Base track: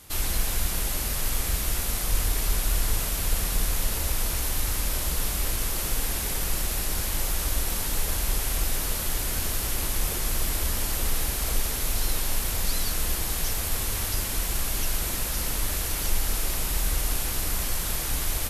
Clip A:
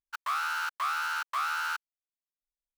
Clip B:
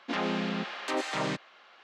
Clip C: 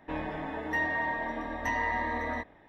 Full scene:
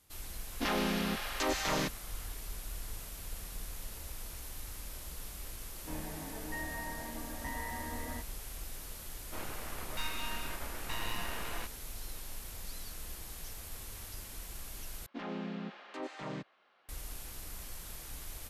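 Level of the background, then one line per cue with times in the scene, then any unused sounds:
base track -17.5 dB
0.52 add B -2 dB + bell 6000 Hz +8.5 dB 0.83 oct
5.79 add C -12.5 dB + bell 120 Hz +10 dB 2.6 oct
9.24 add C -5.5 dB + full-wave rectifier
15.06 replace with B -12 dB + tilt -2 dB/oct
not used: A

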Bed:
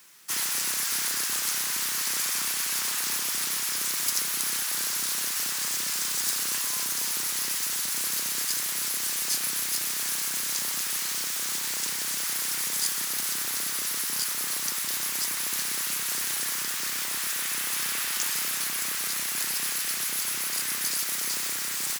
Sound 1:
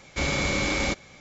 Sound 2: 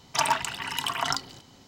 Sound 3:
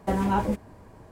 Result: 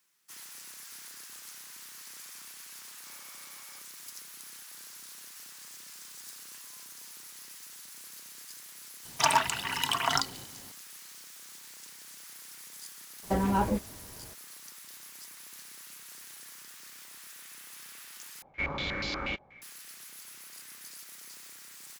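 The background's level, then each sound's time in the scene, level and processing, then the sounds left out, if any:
bed -19 dB
2.88 add 1 -15.5 dB + ladder band-pass 1300 Hz, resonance 45%
9.05 add 2
13.23 add 3 -2.5 dB
18.42 replace with 1 -11 dB + stepped low-pass 8.3 Hz 830–4600 Hz

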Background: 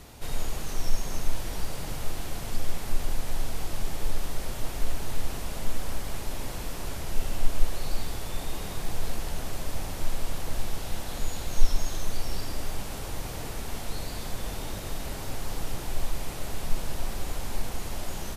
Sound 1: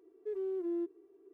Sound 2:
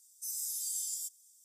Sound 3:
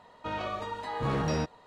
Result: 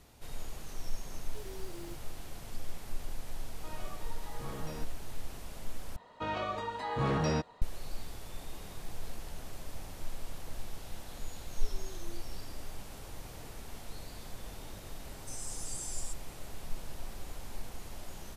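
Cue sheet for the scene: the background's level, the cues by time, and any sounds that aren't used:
background -11 dB
1.09 add 1 -13 dB + block floating point 3-bit
3.39 add 3 -14 dB + block floating point 7-bit
5.96 replace with 3 -1 dB
11.36 add 1 -16.5 dB
15.05 add 2 -4.5 dB + downsampling 22050 Hz

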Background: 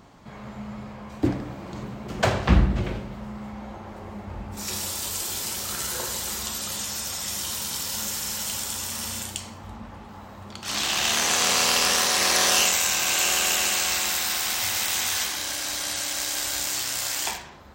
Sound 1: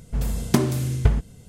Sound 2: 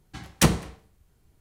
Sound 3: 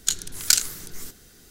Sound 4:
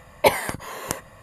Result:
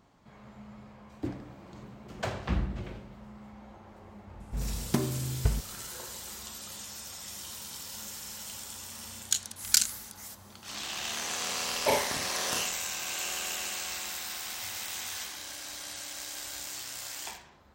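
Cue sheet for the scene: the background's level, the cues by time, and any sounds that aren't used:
background -12 dB
4.4 add 1 -9 dB
9.24 add 3 -4.5 dB + HPF 1200 Hz
11.62 add 4 -12 dB + Schroeder reverb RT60 0.38 s, combs from 26 ms, DRR -1 dB
not used: 2

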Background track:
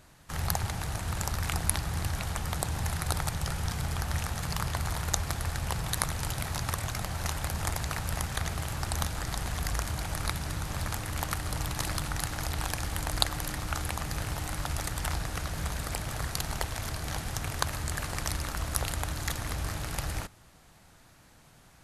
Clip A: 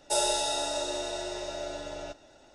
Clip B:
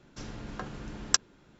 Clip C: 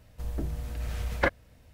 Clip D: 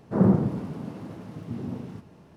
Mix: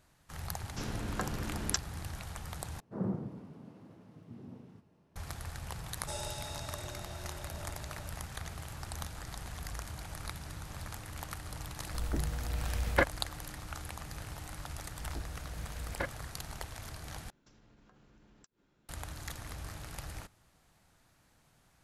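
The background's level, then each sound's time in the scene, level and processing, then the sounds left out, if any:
background track -10 dB
0.6 add B -13.5 dB + maximiser +16 dB
2.8 replace with D -15.5 dB
5.97 add A -15 dB
11.75 add C -1.5 dB
14.77 add C -11.5 dB
17.3 replace with B -13 dB + compressor 16:1, threshold -45 dBFS

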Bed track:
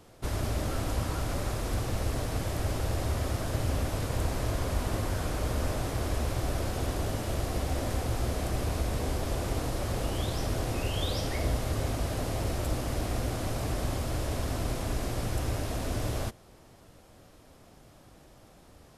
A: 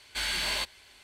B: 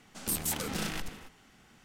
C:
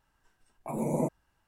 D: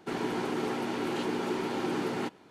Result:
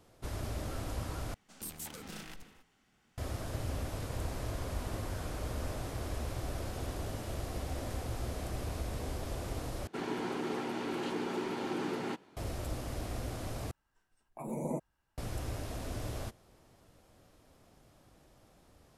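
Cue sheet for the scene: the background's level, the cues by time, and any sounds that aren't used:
bed track -7.5 dB
1.34 replace with B -11.5 dB
9.87 replace with D -4.5 dB
13.71 replace with C -7 dB
not used: A

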